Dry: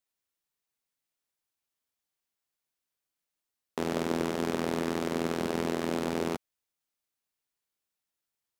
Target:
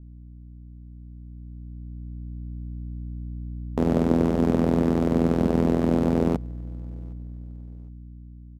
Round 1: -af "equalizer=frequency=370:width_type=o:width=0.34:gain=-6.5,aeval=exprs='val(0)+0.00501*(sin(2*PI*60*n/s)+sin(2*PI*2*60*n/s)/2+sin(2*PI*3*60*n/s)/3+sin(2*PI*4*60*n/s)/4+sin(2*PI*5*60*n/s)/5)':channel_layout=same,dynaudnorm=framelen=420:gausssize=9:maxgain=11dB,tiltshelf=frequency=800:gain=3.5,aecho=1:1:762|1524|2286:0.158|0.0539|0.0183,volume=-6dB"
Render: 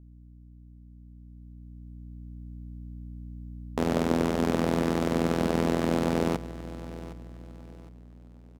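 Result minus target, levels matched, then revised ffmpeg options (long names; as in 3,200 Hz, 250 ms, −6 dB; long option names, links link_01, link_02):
echo-to-direct +12 dB; 1,000 Hz band +4.5 dB
-af "equalizer=frequency=370:width_type=o:width=0.34:gain=-6.5,aeval=exprs='val(0)+0.00501*(sin(2*PI*60*n/s)+sin(2*PI*2*60*n/s)/2+sin(2*PI*3*60*n/s)/3+sin(2*PI*4*60*n/s)/4+sin(2*PI*5*60*n/s)/5)':channel_layout=same,dynaudnorm=framelen=420:gausssize=9:maxgain=11dB,tiltshelf=frequency=800:gain=10.5,aecho=1:1:762|1524:0.0398|0.0135,volume=-6dB"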